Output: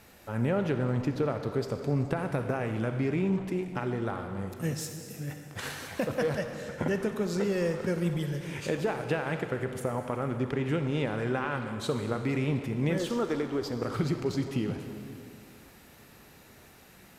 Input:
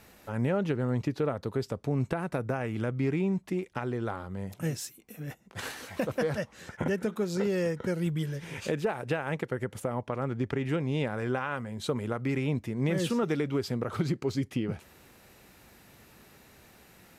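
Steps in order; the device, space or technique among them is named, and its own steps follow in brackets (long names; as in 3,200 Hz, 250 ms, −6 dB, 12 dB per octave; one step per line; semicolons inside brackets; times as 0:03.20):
saturated reverb return (on a send at −3.5 dB: convolution reverb RT60 2.1 s, pre-delay 29 ms + soft clipping −30 dBFS, distortion −11 dB)
0:12.98–0:13.82: on the sum: graphic EQ with 15 bands 160 Hz −11 dB, 2,500 Hz −6 dB, 10,000 Hz −6 dB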